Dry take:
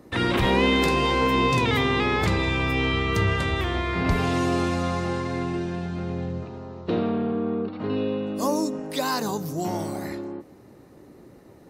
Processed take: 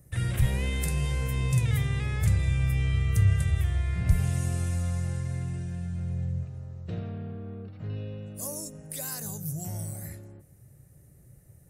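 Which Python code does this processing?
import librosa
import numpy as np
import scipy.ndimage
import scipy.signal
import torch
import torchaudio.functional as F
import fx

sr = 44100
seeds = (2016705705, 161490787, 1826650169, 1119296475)

y = fx.curve_eq(x, sr, hz=(140.0, 240.0, 360.0, 610.0, 990.0, 1700.0, 4200.0, 9600.0, 15000.0), db=(0, -23, -24, -17, -27, -15, -19, 5, 0))
y = F.gain(torch.from_numpy(y), 3.5).numpy()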